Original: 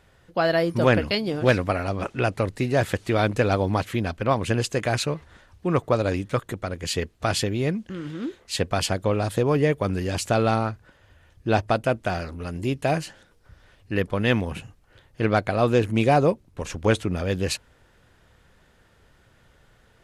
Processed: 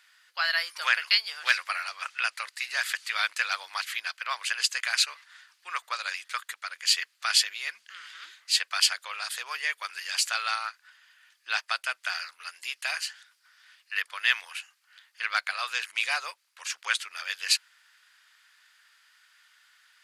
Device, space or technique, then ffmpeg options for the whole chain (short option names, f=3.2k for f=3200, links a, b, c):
headphones lying on a table: -af "highpass=f=1.4k:w=0.5412,highpass=f=1.4k:w=1.3066,equalizer=f=4.7k:t=o:w=0.21:g=6.5,volume=3.5dB"